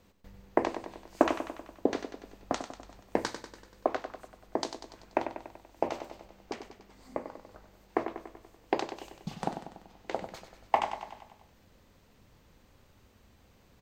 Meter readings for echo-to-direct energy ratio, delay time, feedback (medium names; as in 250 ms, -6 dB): -8.0 dB, 96 ms, 57%